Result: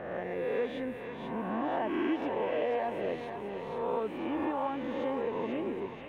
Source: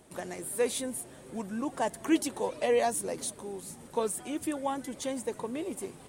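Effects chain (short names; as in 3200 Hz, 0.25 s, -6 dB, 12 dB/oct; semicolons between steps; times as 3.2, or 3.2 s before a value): spectral swells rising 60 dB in 1.40 s; band shelf 6500 Hz -15 dB; compressor, threshold -26 dBFS, peak gain reduction 7.5 dB; air absorption 250 m; on a send: thinning echo 0.487 s, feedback 62%, high-pass 1100 Hz, level -4 dB; on the sum: gain -1 dB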